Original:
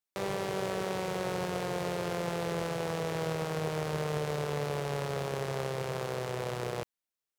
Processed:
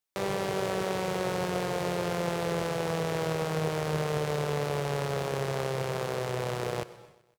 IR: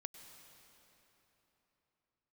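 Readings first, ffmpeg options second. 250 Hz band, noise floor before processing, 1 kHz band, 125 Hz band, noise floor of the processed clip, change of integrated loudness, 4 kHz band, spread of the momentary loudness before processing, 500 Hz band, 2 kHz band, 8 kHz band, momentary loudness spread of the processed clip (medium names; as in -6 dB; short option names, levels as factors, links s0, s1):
+3.0 dB, under -85 dBFS, +3.0 dB, +3.0 dB, -62 dBFS, +3.0 dB, +3.0 dB, 2 LU, +3.0 dB, +3.0 dB, +3.0 dB, 2 LU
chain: -filter_complex "[0:a]aecho=1:1:127|254|381|508:0.0944|0.0529|0.0296|0.0166,asplit=2[s0][s1];[1:a]atrim=start_sample=2205,afade=t=out:st=0.38:d=0.01,atrim=end_sample=17199[s2];[s1][s2]afir=irnorm=-1:irlink=0,volume=1.06[s3];[s0][s3]amix=inputs=2:normalize=0,volume=0.891"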